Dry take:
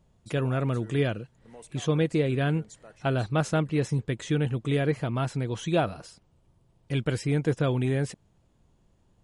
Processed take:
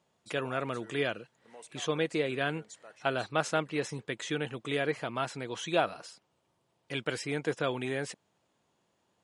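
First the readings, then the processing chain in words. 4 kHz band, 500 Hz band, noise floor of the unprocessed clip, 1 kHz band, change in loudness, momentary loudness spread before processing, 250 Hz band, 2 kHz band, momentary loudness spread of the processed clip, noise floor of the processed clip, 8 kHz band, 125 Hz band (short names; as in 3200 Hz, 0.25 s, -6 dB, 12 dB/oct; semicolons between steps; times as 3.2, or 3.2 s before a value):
+1.0 dB, -3.5 dB, -65 dBFS, -0.5 dB, -5.5 dB, 7 LU, -8.5 dB, +1.0 dB, 12 LU, -76 dBFS, -0.5 dB, -15.0 dB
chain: weighting filter A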